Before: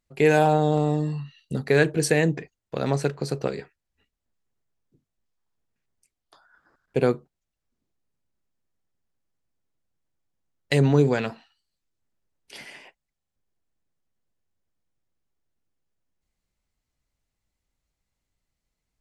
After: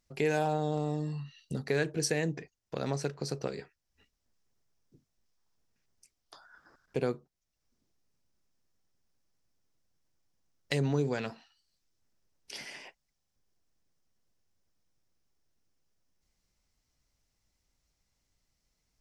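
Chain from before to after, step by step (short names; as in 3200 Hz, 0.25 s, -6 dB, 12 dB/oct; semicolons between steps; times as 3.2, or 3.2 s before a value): bell 5500 Hz +9 dB 0.49 oct; compressor 1.5:1, threshold -51 dBFS, peak gain reduction 13.5 dB; gain +2 dB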